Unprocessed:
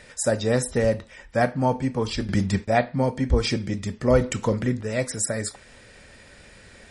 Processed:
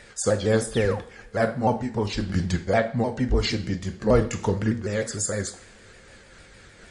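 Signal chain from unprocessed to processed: sawtooth pitch modulation -3 st, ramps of 152 ms; painted sound fall, 0.74–0.99 s, 680–4000 Hz -37 dBFS; two-slope reverb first 0.51 s, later 4.4 s, from -28 dB, DRR 9 dB

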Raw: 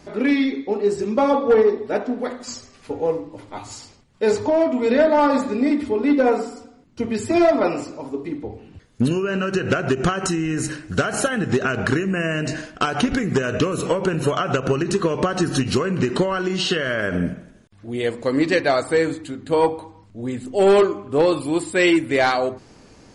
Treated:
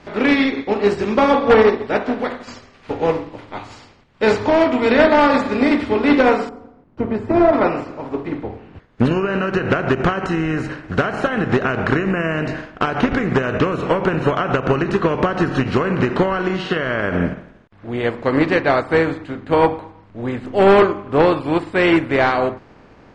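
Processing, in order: spectral contrast reduction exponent 0.64; low-pass 2.8 kHz 12 dB/octave, from 6.49 s 1 kHz, from 7.53 s 1.8 kHz; trim +3.5 dB

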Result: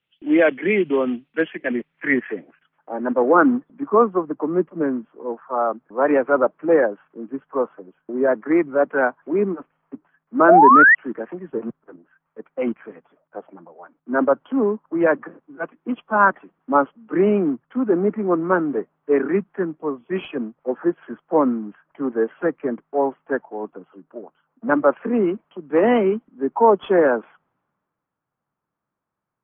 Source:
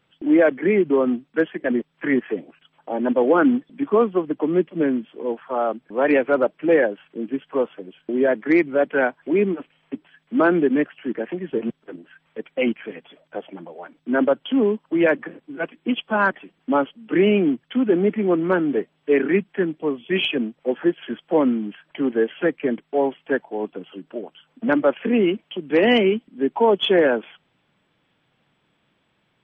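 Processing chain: low-pass sweep 2.9 kHz -> 1.2 kHz, 1.20–3.44 s; painted sound rise, 10.48–10.95 s, 610–2000 Hz -11 dBFS; three bands expanded up and down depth 40%; trim -1.5 dB

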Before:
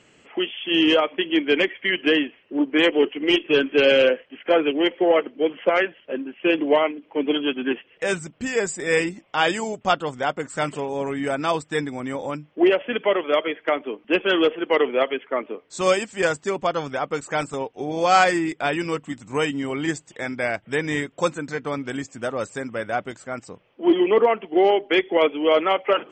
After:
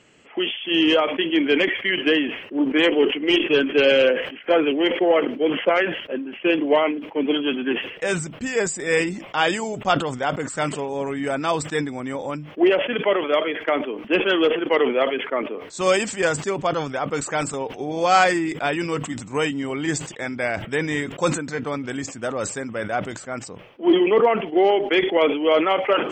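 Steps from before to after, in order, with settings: decay stretcher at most 81 dB/s

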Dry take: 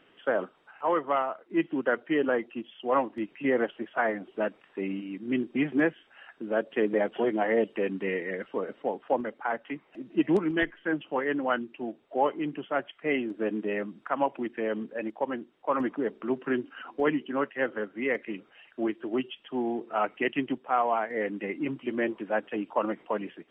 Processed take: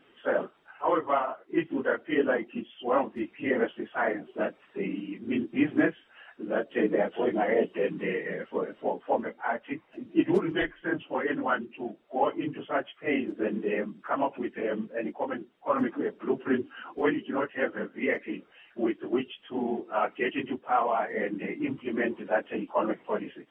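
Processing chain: phase randomisation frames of 50 ms

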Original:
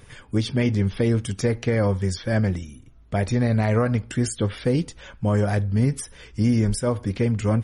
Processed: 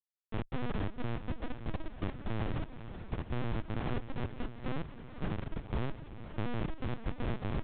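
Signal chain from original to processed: 0.60–2.60 s: high-pass 120 Hz 24 dB/octave; compression 20:1, threshold -27 dBFS, peak gain reduction 13 dB; peak limiter -24 dBFS, peak gain reduction 7 dB; transient shaper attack +6 dB, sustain +1 dB; cascade formant filter i; Schmitt trigger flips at -38 dBFS; distance through air 77 m; echo that smears into a reverb 491 ms, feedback 61%, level -11 dB; LPC vocoder at 8 kHz pitch kept; trim +8 dB

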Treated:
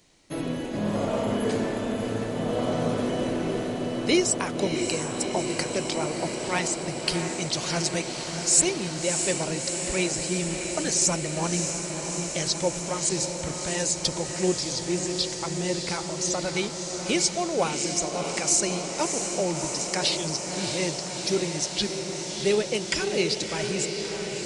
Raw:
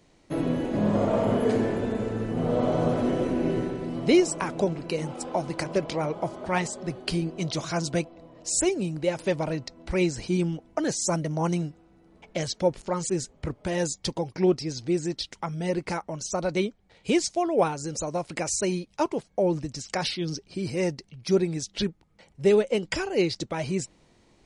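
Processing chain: treble shelf 2.2 kHz +12 dB; on a send: echo that smears into a reverb 649 ms, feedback 79%, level -6.5 dB; on the sum: trim -4 dB

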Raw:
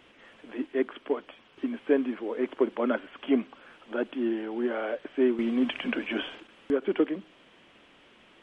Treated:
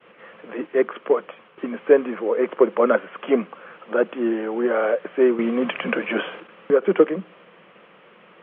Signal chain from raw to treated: expander -55 dBFS; cabinet simulation 160–2700 Hz, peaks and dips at 180 Hz +10 dB, 270 Hz -10 dB, 500 Hz +8 dB, 1.2 kHz +6 dB; trim +7.5 dB

